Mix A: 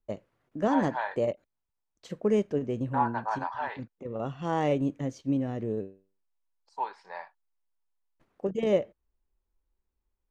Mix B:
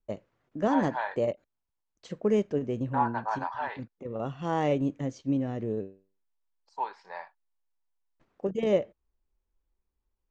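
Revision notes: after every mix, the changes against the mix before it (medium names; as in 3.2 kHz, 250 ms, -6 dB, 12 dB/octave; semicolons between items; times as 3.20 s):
master: add steep low-pass 7.8 kHz 36 dB/octave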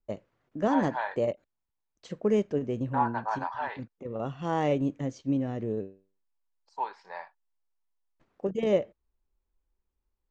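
no change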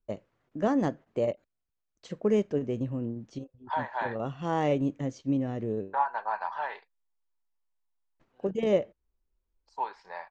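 second voice: entry +3.00 s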